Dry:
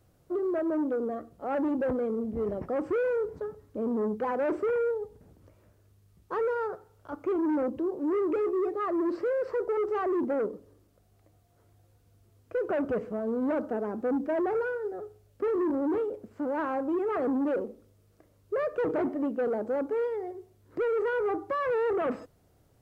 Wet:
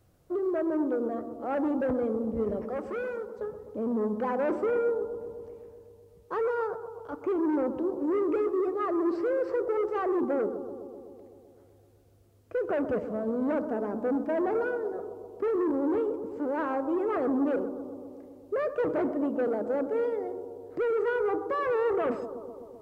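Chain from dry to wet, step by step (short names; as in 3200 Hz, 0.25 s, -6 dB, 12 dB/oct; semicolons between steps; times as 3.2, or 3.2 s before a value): 2.6–3.38 HPF 580 Hz -> 1400 Hz 6 dB/oct; on a send: analogue delay 0.127 s, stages 1024, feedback 73%, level -11 dB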